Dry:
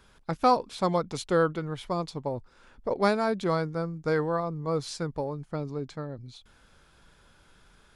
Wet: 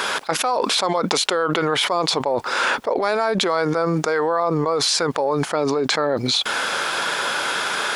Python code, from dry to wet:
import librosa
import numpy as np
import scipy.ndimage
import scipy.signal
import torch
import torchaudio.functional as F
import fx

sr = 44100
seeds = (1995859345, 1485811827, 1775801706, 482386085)

y = scipy.signal.sosfilt(scipy.signal.butter(2, 540.0, 'highpass', fs=sr, output='sos'), x)
y = fx.high_shelf(y, sr, hz=6500.0, db=-5.5)
y = fx.env_flatten(y, sr, amount_pct=100)